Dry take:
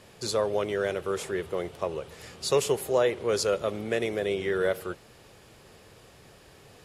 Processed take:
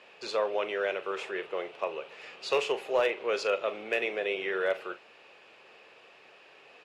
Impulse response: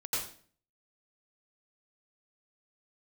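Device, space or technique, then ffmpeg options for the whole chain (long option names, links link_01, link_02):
megaphone: -filter_complex "[0:a]highpass=500,lowpass=3300,equalizer=frequency=2600:width_type=o:width=0.29:gain=10.5,asoftclip=type=hard:threshold=-18dB,asplit=2[link_01][link_02];[link_02]adelay=42,volume=-13dB[link_03];[link_01][link_03]amix=inputs=2:normalize=0"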